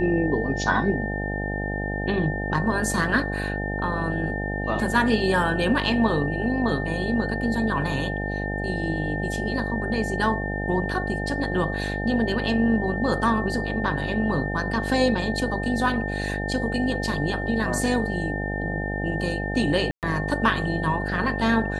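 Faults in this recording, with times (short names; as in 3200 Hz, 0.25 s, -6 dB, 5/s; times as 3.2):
buzz 50 Hz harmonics 17 -29 dBFS
tone 1800 Hz -31 dBFS
19.91–20.03 gap 0.118 s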